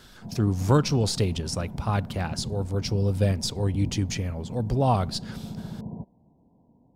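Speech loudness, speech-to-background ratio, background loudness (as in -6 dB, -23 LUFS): -26.5 LUFS, 11.5 dB, -38.0 LUFS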